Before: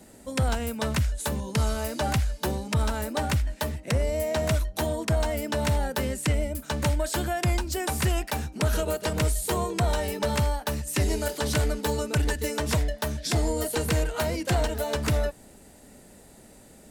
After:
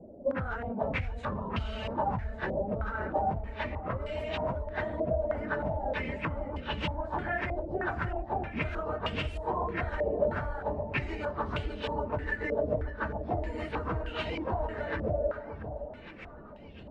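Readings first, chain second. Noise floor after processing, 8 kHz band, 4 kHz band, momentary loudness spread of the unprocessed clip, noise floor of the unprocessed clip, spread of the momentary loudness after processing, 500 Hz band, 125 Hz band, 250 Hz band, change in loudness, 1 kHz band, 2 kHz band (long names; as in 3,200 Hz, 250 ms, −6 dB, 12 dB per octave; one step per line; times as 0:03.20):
−47 dBFS, below −30 dB, −10.5 dB, 3 LU, −51 dBFS, 5 LU, −3.0 dB, −9.5 dB, −6.5 dB, −6.0 dB, −1.5 dB, −2.5 dB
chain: random phases in long frames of 50 ms
low-pass that shuts in the quiet parts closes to 560 Hz, open at −21.5 dBFS
downward compressor, threshold −33 dBFS, peak gain reduction 15 dB
delay that swaps between a low-pass and a high-pass 573 ms, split 930 Hz, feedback 54%, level −6 dB
low-pass on a step sequencer 3.2 Hz 600–2,900 Hz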